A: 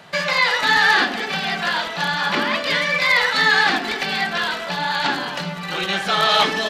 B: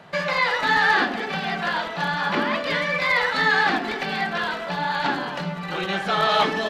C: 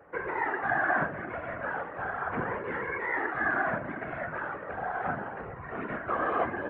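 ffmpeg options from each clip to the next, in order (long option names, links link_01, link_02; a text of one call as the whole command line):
ffmpeg -i in.wav -af "highshelf=frequency=2400:gain=-11" out.wav
ffmpeg -i in.wav -af "afftfilt=real='hypot(re,im)*cos(2*PI*random(0))':imag='hypot(re,im)*sin(2*PI*random(1))':win_size=512:overlap=0.75,highpass=frequency=240:width_type=q:width=0.5412,highpass=frequency=240:width_type=q:width=1.307,lowpass=frequency=2100:width_type=q:width=0.5176,lowpass=frequency=2100:width_type=q:width=0.7071,lowpass=frequency=2100:width_type=q:width=1.932,afreqshift=-120,volume=-2dB" out.wav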